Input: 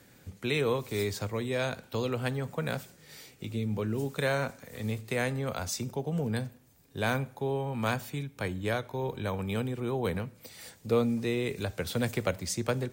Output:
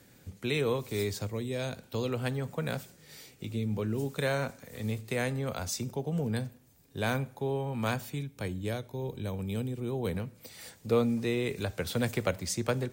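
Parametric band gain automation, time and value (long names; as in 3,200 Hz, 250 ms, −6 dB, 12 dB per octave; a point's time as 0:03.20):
parametric band 1,300 Hz 2.3 octaves
0:01.11 −3 dB
0:01.47 −11 dB
0:02.10 −2.5 dB
0:08.05 −2.5 dB
0:08.83 −11.5 dB
0:09.74 −11.5 dB
0:10.56 0 dB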